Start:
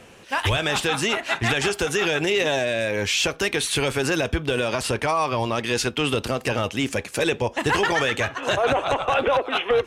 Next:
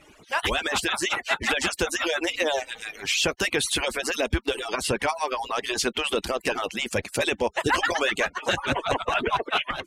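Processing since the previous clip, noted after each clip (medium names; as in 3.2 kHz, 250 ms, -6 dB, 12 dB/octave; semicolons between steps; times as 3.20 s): harmonic-percussive separation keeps percussive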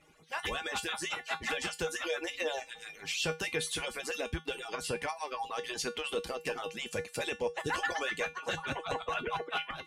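feedback comb 160 Hz, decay 0.22 s, harmonics odd, mix 80%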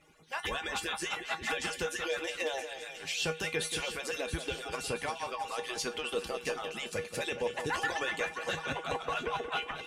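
two-band feedback delay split 2.4 kHz, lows 180 ms, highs 674 ms, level -9.5 dB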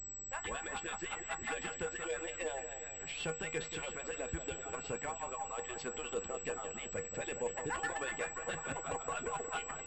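local Wiener filter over 9 samples; added noise brown -52 dBFS; class-D stage that switches slowly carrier 7.8 kHz; trim -4.5 dB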